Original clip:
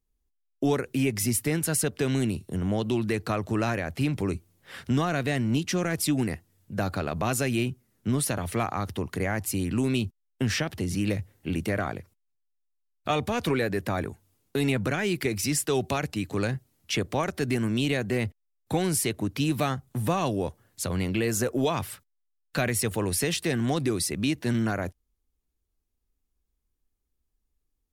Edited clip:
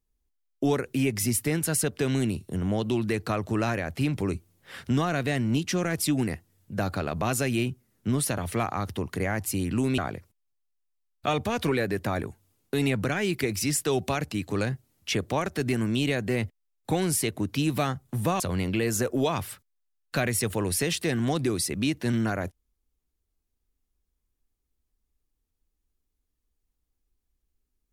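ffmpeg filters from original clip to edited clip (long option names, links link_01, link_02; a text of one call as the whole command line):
ffmpeg -i in.wav -filter_complex "[0:a]asplit=3[link_01][link_02][link_03];[link_01]atrim=end=9.982[link_04];[link_02]atrim=start=11.798:end=20.222[link_05];[link_03]atrim=start=20.808[link_06];[link_04][link_05]acrossfade=duration=0.004:curve1=hsin:curve2=hsin[link_07];[link_07][link_06]acrossfade=duration=0.004:curve1=hsin:curve2=hsin" out.wav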